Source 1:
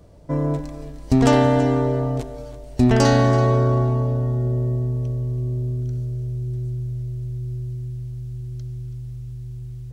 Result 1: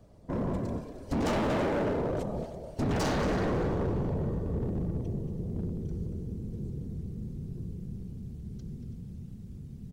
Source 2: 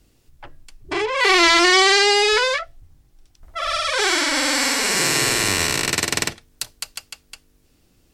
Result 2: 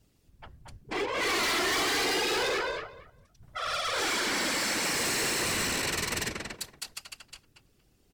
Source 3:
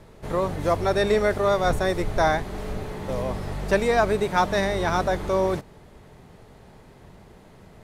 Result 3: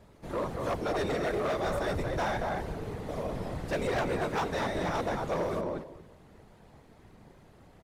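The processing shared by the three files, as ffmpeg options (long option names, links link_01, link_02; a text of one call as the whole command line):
ffmpeg -i in.wav -filter_complex "[0:a]asplit=2[link_01][link_02];[link_02]adelay=232,lowpass=frequency=2200:poles=1,volume=-3.5dB,asplit=2[link_03][link_04];[link_04]adelay=232,lowpass=frequency=2200:poles=1,volume=0.18,asplit=2[link_05][link_06];[link_06]adelay=232,lowpass=frequency=2200:poles=1,volume=0.18[link_07];[link_01][link_03][link_05][link_07]amix=inputs=4:normalize=0,afftfilt=real='hypot(re,im)*cos(2*PI*random(0))':imag='hypot(re,im)*sin(2*PI*random(1))':win_size=512:overlap=0.75,asoftclip=type=hard:threshold=-24dB,volume=-2dB" out.wav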